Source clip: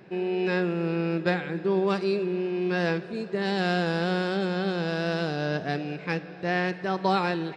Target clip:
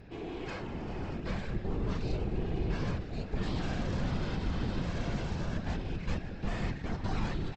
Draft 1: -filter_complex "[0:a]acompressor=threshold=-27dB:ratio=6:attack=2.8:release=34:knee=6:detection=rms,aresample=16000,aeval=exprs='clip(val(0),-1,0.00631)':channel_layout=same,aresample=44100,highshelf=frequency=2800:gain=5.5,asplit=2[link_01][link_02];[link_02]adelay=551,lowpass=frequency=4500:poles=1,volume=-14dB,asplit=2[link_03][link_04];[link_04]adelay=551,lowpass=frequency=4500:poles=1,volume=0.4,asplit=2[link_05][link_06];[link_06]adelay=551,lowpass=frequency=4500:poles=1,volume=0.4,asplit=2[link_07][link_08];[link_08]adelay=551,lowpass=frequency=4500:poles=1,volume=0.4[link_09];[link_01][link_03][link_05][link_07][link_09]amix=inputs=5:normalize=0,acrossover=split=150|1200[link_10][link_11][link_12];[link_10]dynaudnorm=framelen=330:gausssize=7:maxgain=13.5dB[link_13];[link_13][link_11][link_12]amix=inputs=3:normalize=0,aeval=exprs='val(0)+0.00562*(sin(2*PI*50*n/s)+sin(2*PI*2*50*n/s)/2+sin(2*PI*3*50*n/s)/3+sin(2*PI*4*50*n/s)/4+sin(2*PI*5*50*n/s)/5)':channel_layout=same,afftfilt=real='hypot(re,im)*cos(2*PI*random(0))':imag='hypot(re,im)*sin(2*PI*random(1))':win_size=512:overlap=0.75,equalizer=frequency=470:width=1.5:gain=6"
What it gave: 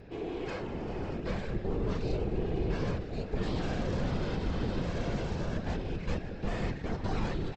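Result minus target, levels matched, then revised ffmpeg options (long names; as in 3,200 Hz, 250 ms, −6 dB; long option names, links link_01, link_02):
500 Hz band +3.5 dB
-filter_complex "[0:a]acompressor=threshold=-27dB:ratio=6:attack=2.8:release=34:knee=6:detection=rms,aresample=16000,aeval=exprs='clip(val(0),-1,0.00631)':channel_layout=same,aresample=44100,highshelf=frequency=2800:gain=5.5,asplit=2[link_01][link_02];[link_02]adelay=551,lowpass=frequency=4500:poles=1,volume=-14dB,asplit=2[link_03][link_04];[link_04]adelay=551,lowpass=frequency=4500:poles=1,volume=0.4,asplit=2[link_05][link_06];[link_06]adelay=551,lowpass=frequency=4500:poles=1,volume=0.4,asplit=2[link_07][link_08];[link_08]adelay=551,lowpass=frequency=4500:poles=1,volume=0.4[link_09];[link_01][link_03][link_05][link_07][link_09]amix=inputs=5:normalize=0,acrossover=split=150|1200[link_10][link_11][link_12];[link_10]dynaudnorm=framelen=330:gausssize=7:maxgain=13.5dB[link_13];[link_13][link_11][link_12]amix=inputs=3:normalize=0,aeval=exprs='val(0)+0.00562*(sin(2*PI*50*n/s)+sin(2*PI*2*50*n/s)/2+sin(2*PI*3*50*n/s)/3+sin(2*PI*4*50*n/s)/4+sin(2*PI*5*50*n/s)/5)':channel_layout=same,afftfilt=real='hypot(re,im)*cos(2*PI*random(0))':imag='hypot(re,im)*sin(2*PI*random(1))':win_size=512:overlap=0.75"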